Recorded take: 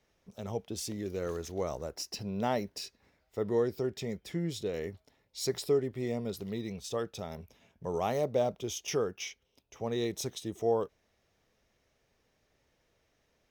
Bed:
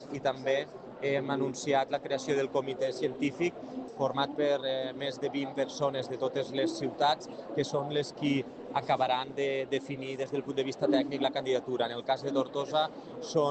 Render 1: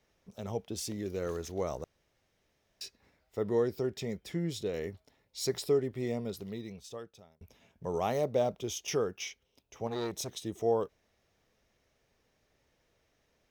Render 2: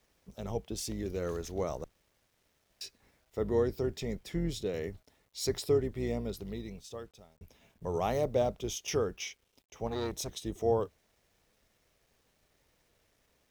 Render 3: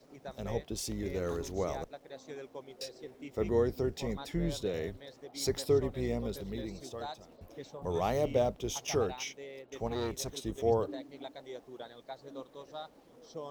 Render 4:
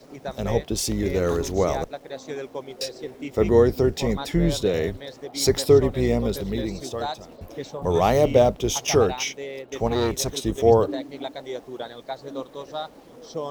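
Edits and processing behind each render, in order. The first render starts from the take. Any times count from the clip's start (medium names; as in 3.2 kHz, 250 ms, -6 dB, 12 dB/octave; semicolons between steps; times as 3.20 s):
1.84–2.81 s: room tone; 6.10–7.41 s: fade out linear; 9.87–10.29 s: transformer saturation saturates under 830 Hz
octave divider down 2 oct, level -5 dB; word length cut 12-bit, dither none
add bed -15.5 dB
trim +12 dB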